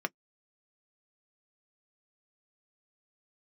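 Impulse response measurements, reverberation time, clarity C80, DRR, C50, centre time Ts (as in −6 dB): non-exponential decay, 60.0 dB, 7.0 dB, 46.0 dB, 2 ms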